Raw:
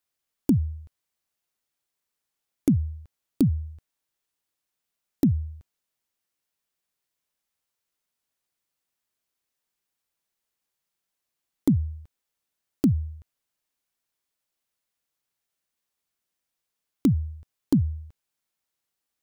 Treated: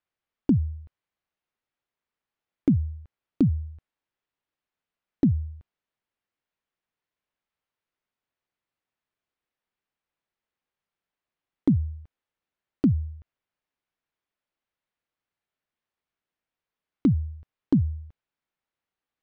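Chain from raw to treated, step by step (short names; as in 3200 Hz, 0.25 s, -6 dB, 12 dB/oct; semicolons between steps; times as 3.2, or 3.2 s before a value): LPF 2700 Hz 12 dB/oct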